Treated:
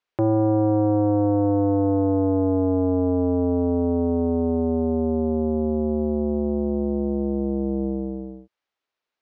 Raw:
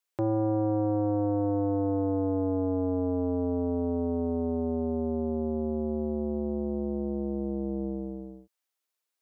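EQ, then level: air absorption 210 m; +7.5 dB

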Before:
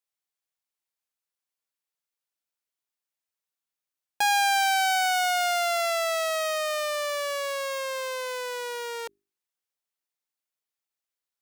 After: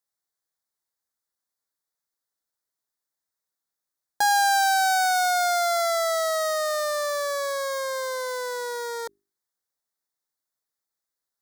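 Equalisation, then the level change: Butterworth band-stop 2700 Hz, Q 1.7; +3.0 dB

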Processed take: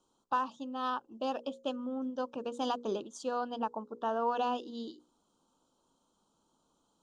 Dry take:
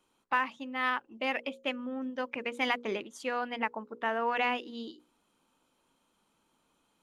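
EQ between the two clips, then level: Butterworth band-stop 2100 Hz, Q 0.96; LPF 8600 Hz 24 dB/oct; bell 6700 Hz +3 dB 0.5 oct; 0.0 dB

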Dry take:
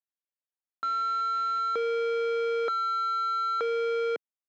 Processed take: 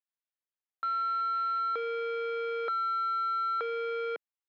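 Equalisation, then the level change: HPF 860 Hz 6 dB/oct; air absorption 240 m; +1.0 dB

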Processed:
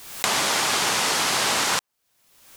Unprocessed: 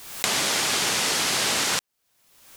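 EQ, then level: dynamic EQ 990 Hz, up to +6 dB, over -44 dBFS, Q 1.1; 0.0 dB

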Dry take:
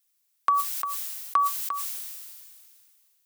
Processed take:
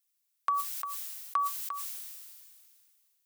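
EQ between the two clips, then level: HPF 480 Hz 6 dB/oct; -6.0 dB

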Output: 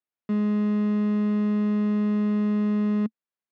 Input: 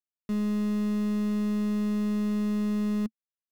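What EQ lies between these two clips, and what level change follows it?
BPF 150–2400 Hz; +5.0 dB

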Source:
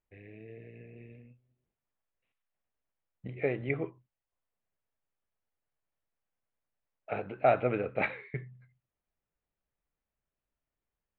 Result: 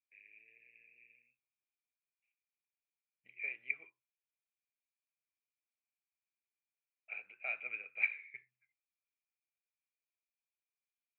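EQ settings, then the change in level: band-pass 2400 Hz, Q 15; +6.0 dB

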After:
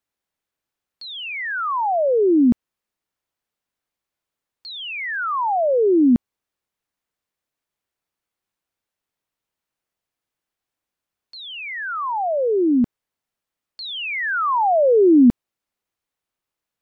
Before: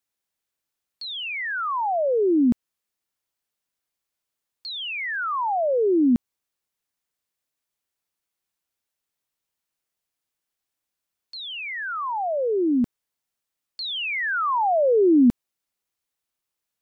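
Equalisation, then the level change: high shelf 3300 Hz -9 dB; +4.0 dB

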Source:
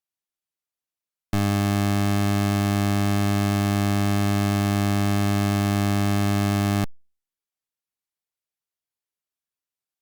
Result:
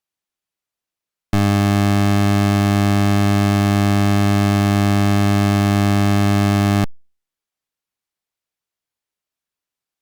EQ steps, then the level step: high shelf 7300 Hz -6 dB; +6.5 dB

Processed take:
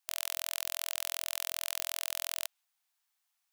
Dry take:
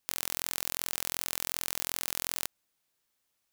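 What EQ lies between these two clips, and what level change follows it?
dynamic EQ 3100 Hz, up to +5 dB, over -57 dBFS, Q 1.7; brick-wall FIR high-pass 650 Hz; -2.5 dB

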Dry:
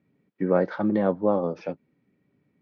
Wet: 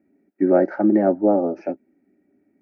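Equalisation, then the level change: bell 410 Hz +13 dB 1.9 oct; fixed phaser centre 710 Hz, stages 8; 0.0 dB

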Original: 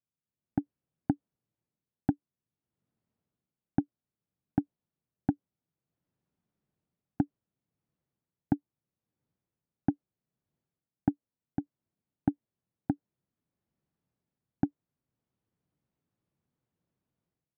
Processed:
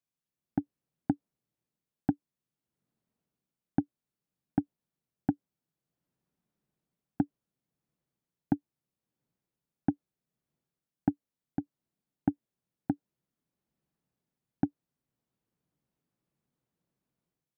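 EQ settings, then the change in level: bell 94 Hz -13 dB 0.3 oct; 0.0 dB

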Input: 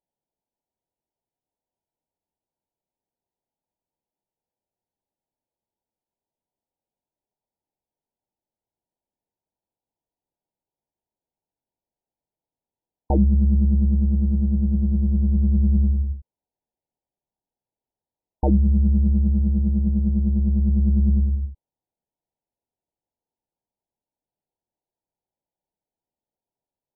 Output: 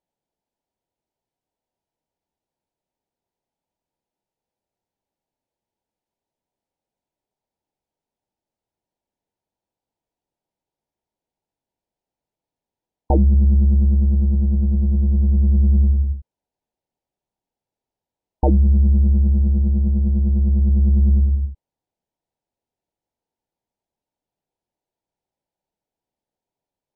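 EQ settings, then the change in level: dynamic EQ 180 Hz, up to -8 dB, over -36 dBFS, Q 2; air absorption 51 m; +4.5 dB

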